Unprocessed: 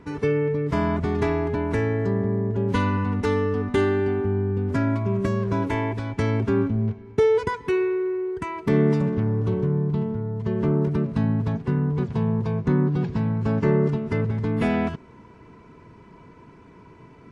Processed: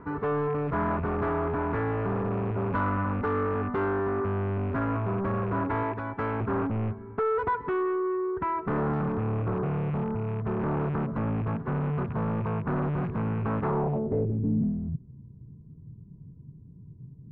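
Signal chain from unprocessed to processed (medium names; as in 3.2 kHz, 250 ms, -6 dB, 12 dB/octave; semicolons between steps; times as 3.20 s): rattle on loud lows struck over -26 dBFS, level -30 dBFS; 5.83–6.41 s: bass shelf 200 Hz -10 dB; saturation -26 dBFS, distortion -8 dB; low-pass sweep 1.3 kHz -> 140 Hz, 13.63–14.80 s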